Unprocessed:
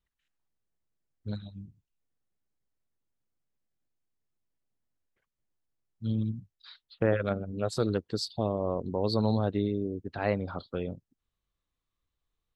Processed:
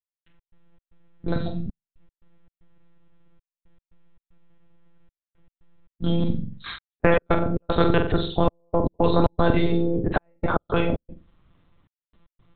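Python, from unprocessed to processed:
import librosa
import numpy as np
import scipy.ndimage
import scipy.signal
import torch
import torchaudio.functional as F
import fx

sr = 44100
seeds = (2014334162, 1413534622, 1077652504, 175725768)

y = fx.low_shelf(x, sr, hz=61.0, db=-4.5)
y = fx.lpc_monotone(y, sr, seeds[0], pitch_hz=170.0, order=10)
y = fx.lowpass(y, sr, hz=1900.0, slope=6)
y = fx.low_shelf(y, sr, hz=420.0, db=6.0)
y = fx.room_flutter(y, sr, wall_m=7.7, rt60_s=0.35)
y = fx.step_gate(y, sr, bpm=115, pattern='..x.xx.xxxxxx', floor_db=-60.0, edge_ms=4.5)
y = fx.spectral_comp(y, sr, ratio=2.0)
y = F.gain(torch.from_numpy(y), 7.0).numpy()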